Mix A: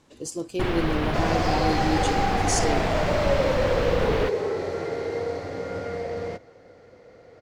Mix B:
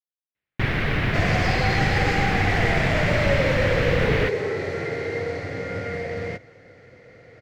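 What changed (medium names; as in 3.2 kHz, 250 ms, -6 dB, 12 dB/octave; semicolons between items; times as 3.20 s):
speech: muted; master: add ten-band graphic EQ 125 Hz +9 dB, 1 kHz -5 dB, 2 kHz +11 dB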